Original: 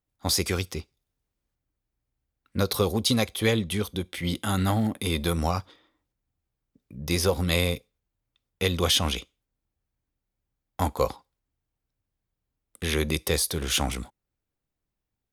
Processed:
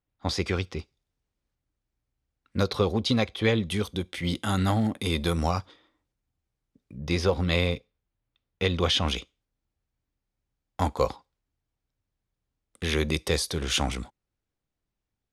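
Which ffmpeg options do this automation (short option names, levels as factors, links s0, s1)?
-af "asetnsamples=n=441:p=0,asendcmd='0.79 lowpass f 7200;2.68 lowpass f 3900;3.63 lowpass f 8300;6.98 lowpass f 4100;9.08 lowpass f 7100',lowpass=3600"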